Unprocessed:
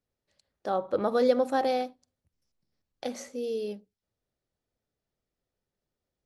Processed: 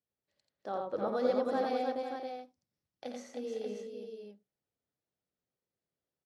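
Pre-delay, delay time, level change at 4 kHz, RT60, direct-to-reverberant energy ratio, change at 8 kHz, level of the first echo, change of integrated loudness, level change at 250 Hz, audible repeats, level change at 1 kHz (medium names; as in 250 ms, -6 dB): no reverb, 49 ms, -7.0 dB, no reverb, no reverb, -9.5 dB, -15.5 dB, -6.5 dB, -5.0 dB, 5, -5.0 dB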